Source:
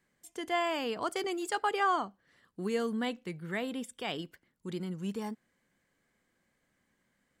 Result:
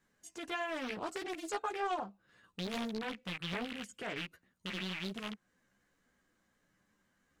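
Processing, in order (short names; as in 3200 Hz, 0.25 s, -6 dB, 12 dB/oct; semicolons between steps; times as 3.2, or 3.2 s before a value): rattling part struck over -42 dBFS, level -23 dBFS; formant shift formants -2 st; chorus voices 4, 0.39 Hz, delay 13 ms, depth 3.6 ms; compressor 1.5:1, threshold -49 dBFS, peak gain reduction 8.5 dB; Doppler distortion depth 0.86 ms; gain +3.5 dB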